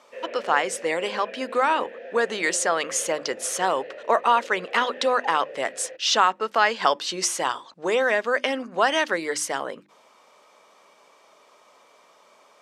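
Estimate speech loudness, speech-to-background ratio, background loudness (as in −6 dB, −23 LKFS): −24.0 LKFS, 15.5 dB, −39.5 LKFS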